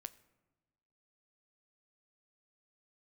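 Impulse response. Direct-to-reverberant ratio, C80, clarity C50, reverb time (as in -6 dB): 12.5 dB, 20.0 dB, 18.5 dB, 1.2 s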